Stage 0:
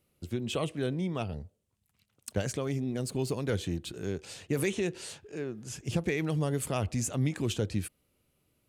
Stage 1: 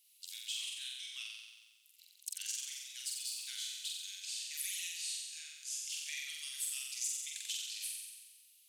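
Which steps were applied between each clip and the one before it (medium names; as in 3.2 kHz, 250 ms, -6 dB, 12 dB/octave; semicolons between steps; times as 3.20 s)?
inverse Chebyshev high-pass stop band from 530 Hz, stop band 80 dB; compression 2:1, threshold -58 dBFS, peak gain reduction 15 dB; on a send: flutter echo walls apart 7.8 m, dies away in 1.3 s; on the sum: trim +10 dB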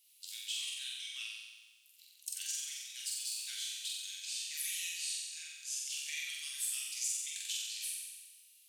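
reverberation, pre-delay 3 ms, DRR 2.5 dB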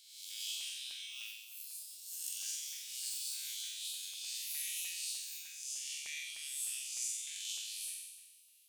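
reverse spectral sustain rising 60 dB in 0.97 s; LFO notch saw up 3.3 Hz 750–2000 Hz; ever faster or slower copies 90 ms, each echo +7 st, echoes 2, each echo -6 dB; trim -5 dB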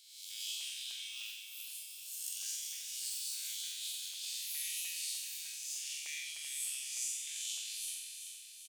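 high-pass 340 Hz; feedback delay 385 ms, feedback 56%, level -8 dB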